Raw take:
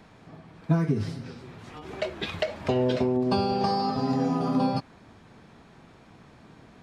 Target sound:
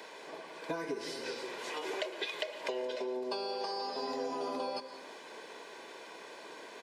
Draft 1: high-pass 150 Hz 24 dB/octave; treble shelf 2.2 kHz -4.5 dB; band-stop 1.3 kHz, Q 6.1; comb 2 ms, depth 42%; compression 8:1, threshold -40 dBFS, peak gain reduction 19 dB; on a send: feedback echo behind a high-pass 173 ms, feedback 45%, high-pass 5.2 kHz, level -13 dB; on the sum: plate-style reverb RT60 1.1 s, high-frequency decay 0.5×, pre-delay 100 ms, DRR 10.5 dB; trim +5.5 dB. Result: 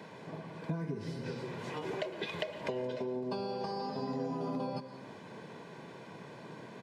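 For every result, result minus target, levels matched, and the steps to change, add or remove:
125 Hz band +19.5 dB; 4 kHz band -6.0 dB
change: high-pass 330 Hz 24 dB/octave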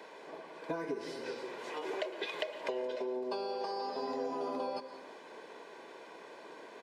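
4 kHz band -5.5 dB
change: treble shelf 2.2 kHz +5 dB

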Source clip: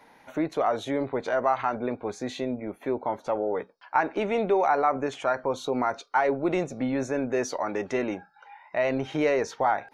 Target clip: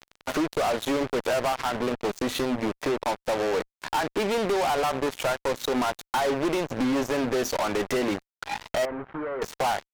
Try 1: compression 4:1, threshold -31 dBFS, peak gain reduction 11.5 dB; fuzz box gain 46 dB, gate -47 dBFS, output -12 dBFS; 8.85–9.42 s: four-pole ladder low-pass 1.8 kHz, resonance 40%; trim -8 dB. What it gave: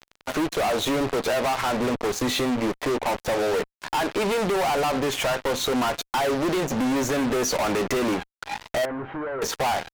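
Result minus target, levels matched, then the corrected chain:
compression: peak gain reduction -6.5 dB
compression 4:1, threshold -39.5 dBFS, peak gain reduction 18 dB; fuzz box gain 46 dB, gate -47 dBFS, output -12 dBFS; 8.85–9.42 s: four-pole ladder low-pass 1.8 kHz, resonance 40%; trim -8 dB

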